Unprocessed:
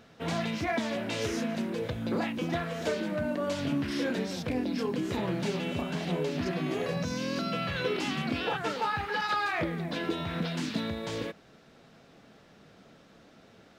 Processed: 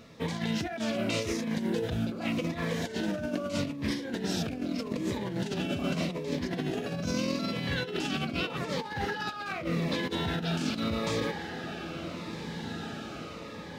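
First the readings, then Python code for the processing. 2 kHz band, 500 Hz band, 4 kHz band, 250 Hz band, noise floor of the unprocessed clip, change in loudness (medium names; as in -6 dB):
-1.5 dB, -1.5 dB, +1.5 dB, +0.5 dB, -57 dBFS, -1.0 dB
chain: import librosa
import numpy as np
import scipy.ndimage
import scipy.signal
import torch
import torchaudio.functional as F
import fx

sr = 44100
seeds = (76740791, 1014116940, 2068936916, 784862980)

y = fx.echo_diffused(x, sr, ms=1957, feedback_pct=55, wet_db=-11.5)
y = fx.over_compress(y, sr, threshold_db=-33.0, ratio=-0.5)
y = fx.notch_cascade(y, sr, direction='falling', hz=0.82)
y = y * librosa.db_to_amplitude(3.0)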